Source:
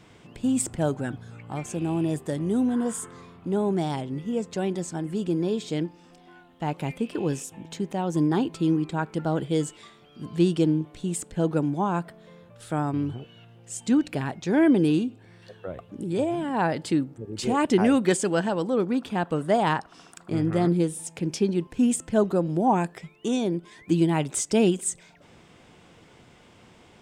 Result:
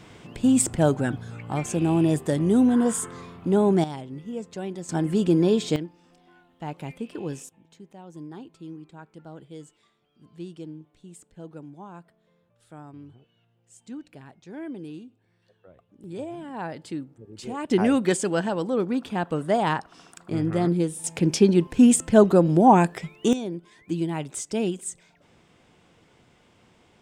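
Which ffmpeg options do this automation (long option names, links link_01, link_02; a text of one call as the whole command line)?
ffmpeg -i in.wav -af "asetnsamples=nb_out_samples=441:pad=0,asendcmd='3.84 volume volume -5.5dB;4.89 volume volume 6dB;5.76 volume volume -5.5dB;7.49 volume volume -17dB;16.04 volume volume -9dB;17.71 volume volume -0.5dB;21.04 volume volume 6.5dB;23.33 volume volume -5.5dB',volume=5dB" out.wav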